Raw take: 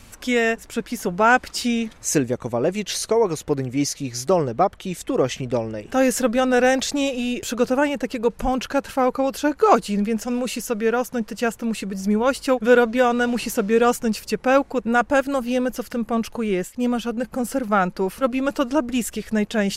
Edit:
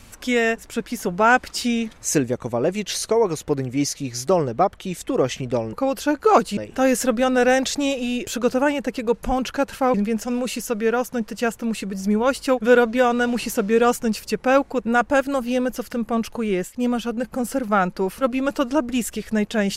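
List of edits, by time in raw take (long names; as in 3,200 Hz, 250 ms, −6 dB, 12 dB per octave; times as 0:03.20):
0:09.10–0:09.94: move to 0:05.73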